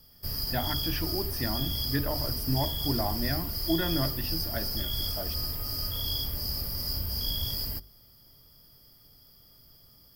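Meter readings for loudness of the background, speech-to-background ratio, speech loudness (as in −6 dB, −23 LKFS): −30.5 LKFS, −3.5 dB, −34.0 LKFS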